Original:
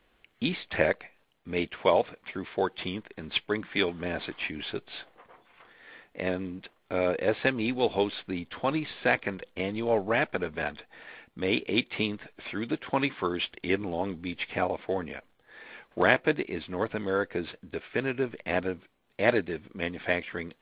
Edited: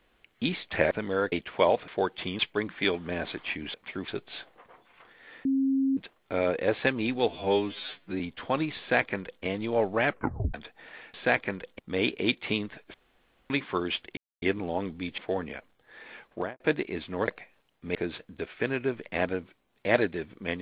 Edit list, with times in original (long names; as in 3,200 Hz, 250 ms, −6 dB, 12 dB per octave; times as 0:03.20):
0:00.91–0:01.58: swap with 0:16.88–0:17.29
0:02.14–0:02.48: move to 0:04.68
0:02.99–0:03.33: remove
0:06.05–0:06.57: beep over 269 Hz −22 dBFS
0:07.88–0:08.34: time-stretch 2×
0:08.93–0:09.58: duplicate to 0:11.28
0:10.20: tape stop 0.48 s
0:12.43–0:12.99: fill with room tone
0:13.66: splice in silence 0.25 s
0:14.42–0:14.78: remove
0:15.84–0:16.20: fade out and dull